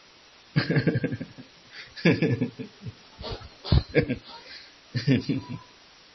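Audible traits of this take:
sample-and-hold tremolo 3.5 Hz
a quantiser's noise floor 8 bits, dither triangular
MP3

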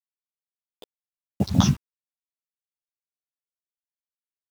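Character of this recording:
phaser sweep stages 4, 0.53 Hz, lowest notch 340–3,600 Hz
a quantiser's noise floor 8 bits, dither none
a shimmering, thickened sound

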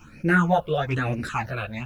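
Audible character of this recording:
phaser sweep stages 8, 1.1 Hz, lowest notch 250–1,100 Hz
a quantiser's noise floor 12 bits, dither none
a shimmering, thickened sound

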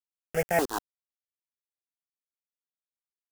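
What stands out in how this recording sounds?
a quantiser's noise floor 6 bits, dither none
notches that jump at a steady rate 3.4 Hz 500–1,900 Hz

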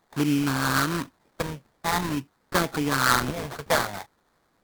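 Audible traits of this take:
a quantiser's noise floor 12 bits, dither triangular
phaser sweep stages 6, 0.47 Hz, lowest notch 300–1,000 Hz
aliases and images of a low sample rate 2,800 Hz, jitter 20%
AAC

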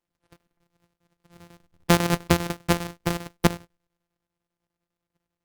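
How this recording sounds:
a buzz of ramps at a fixed pitch in blocks of 256 samples
chopped level 10 Hz, depth 65%, duty 70%
Opus

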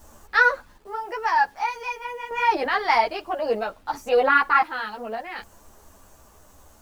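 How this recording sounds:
sample-and-hold tremolo 1.3 Hz, depth 65%
a quantiser's noise floor 10 bits, dither none
a shimmering, thickened sound

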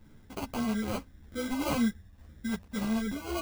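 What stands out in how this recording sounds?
phaser sweep stages 2, 1.8 Hz, lowest notch 440–1,600 Hz
aliases and images of a low sample rate 1,800 Hz, jitter 0%
a shimmering, thickened sound

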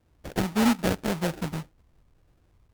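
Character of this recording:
phaser sweep stages 4, 1.8 Hz, lowest notch 500–1,500 Hz
aliases and images of a low sample rate 1,100 Hz, jitter 20%
MP3

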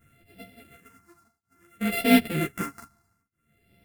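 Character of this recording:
a buzz of ramps at a fixed pitch in blocks of 64 samples
phaser sweep stages 4, 0.59 Hz, lowest notch 510–1,100 Hz
tremolo triangle 0.53 Hz, depth 100%
a shimmering, thickened sound

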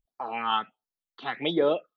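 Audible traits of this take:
phaser sweep stages 6, 1.4 Hz, lowest notch 580–2,700 Hz

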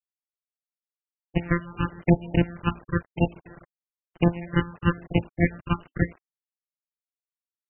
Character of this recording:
a buzz of ramps at a fixed pitch in blocks of 256 samples
phaser sweep stages 8, 1 Hz, lowest notch 580–1,400 Hz
a quantiser's noise floor 8 bits, dither none
MP3

